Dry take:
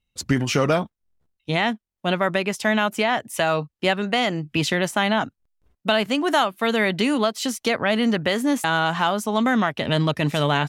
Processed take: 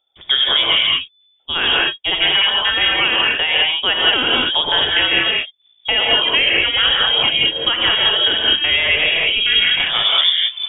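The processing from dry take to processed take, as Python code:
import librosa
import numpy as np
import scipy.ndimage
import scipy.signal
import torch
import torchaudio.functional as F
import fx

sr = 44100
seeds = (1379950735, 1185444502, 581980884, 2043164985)

p1 = fx.tape_stop_end(x, sr, length_s=0.97)
p2 = fx.rev_gated(p1, sr, seeds[0], gate_ms=230, shape='rising', drr_db=-3.5)
p3 = fx.freq_invert(p2, sr, carrier_hz=3500)
p4 = fx.rider(p3, sr, range_db=10, speed_s=0.5)
p5 = p3 + F.gain(torch.from_numpy(p4), 2.5).numpy()
y = F.gain(torch.from_numpy(p5), -6.0).numpy()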